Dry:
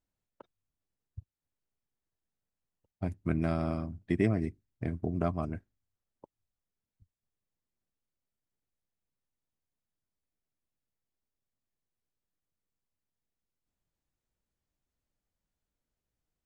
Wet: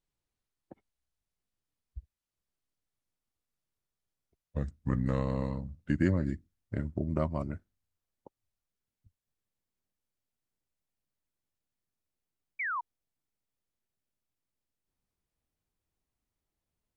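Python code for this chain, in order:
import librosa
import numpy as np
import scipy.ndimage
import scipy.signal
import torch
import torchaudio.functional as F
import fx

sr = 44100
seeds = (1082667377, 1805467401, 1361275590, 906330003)

y = fx.speed_glide(x, sr, from_pct=55, to_pct=139)
y = fx.spec_paint(y, sr, seeds[0], shape='fall', start_s=12.59, length_s=0.22, low_hz=910.0, high_hz=2400.0, level_db=-33.0)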